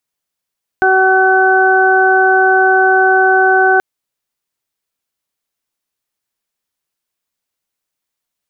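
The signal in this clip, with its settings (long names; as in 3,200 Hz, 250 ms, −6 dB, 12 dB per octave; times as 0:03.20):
steady harmonic partials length 2.98 s, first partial 378 Hz, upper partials 1.5/−13/2 dB, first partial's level −13 dB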